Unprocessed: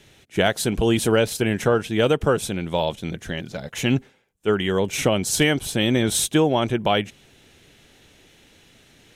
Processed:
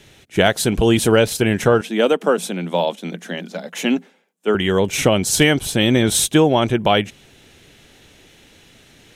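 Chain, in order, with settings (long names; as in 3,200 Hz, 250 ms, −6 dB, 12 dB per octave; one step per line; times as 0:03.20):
0:01.81–0:04.55: Chebyshev high-pass with heavy ripple 170 Hz, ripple 3 dB
level +4.5 dB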